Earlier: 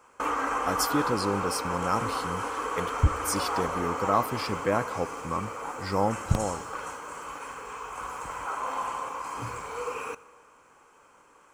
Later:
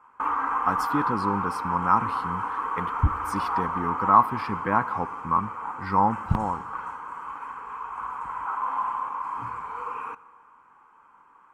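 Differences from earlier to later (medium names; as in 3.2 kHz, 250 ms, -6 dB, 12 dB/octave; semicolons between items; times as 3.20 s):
background -5.5 dB; master: add FFT filter 120 Hz 0 dB, 210 Hz +4 dB, 590 Hz -7 dB, 940 Hz +12 dB, 6.5 kHz -16 dB, 10 kHz -13 dB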